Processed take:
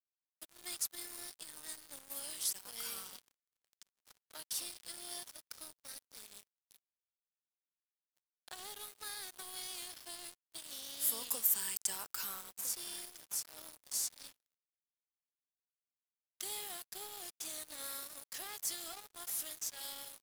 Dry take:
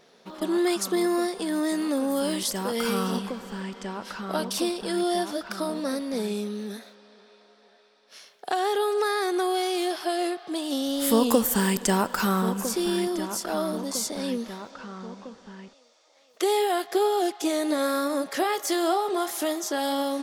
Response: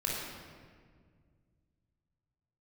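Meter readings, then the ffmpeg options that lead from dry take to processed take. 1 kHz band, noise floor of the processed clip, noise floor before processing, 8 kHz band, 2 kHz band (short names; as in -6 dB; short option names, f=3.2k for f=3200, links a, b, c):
-26.0 dB, under -85 dBFS, -59 dBFS, -5.5 dB, -18.5 dB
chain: -af "aderivative,acrusher=bits=5:mix=0:aa=0.5,volume=-6.5dB"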